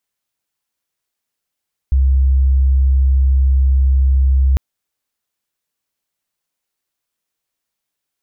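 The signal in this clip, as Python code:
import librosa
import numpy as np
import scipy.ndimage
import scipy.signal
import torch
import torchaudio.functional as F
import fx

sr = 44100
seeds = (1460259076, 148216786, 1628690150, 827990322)

y = 10.0 ** (-9.0 / 20.0) * np.sin(2.0 * np.pi * (66.5 * (np.arange(round(2.65 * sr)) / sr)))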